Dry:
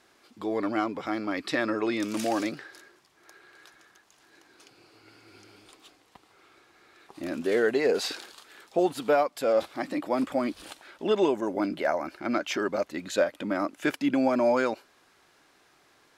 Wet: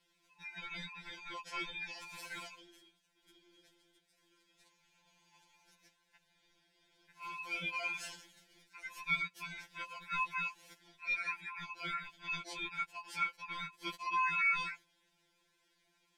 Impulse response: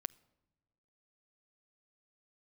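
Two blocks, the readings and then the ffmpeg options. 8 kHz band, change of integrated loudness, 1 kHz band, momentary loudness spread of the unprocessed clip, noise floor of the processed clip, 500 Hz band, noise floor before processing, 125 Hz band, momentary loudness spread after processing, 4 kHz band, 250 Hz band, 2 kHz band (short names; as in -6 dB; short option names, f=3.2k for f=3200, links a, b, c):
-11.5 dB, -10.5 dB, -8.5 dB, 10 LU, -76 dBFS, -32.5 dB, -63 dBFS, -12.0 dB, 14 LU, -7.0 dB, -28.0 dB, -2.5 dB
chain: -af "afftfilt=real='real(if(between(b,1,1008),(2*floor((b-1)/48)+1)*48-b,b),0)':imag='imag(if(between(b,1,1008),(2*floor((b-1)/48)+1)*48-b,b),0)*if(between(b,1,1008),-1,1)':win_size=2048:overlap=0.75,lowshelf=f=130:g=-2.5,aeval=exprs='val(0)*sin(2*PI*1800*n/s)':c=same,asuperstop=centerf=1200:order=8:qfactor=5.3,afftfilt=real='re*2.83*eq(mod(b,8),0)':imag='im*2.83*eq(mod(b,8),0)':win_size=2048:overlap=0.75,volume=-8dB"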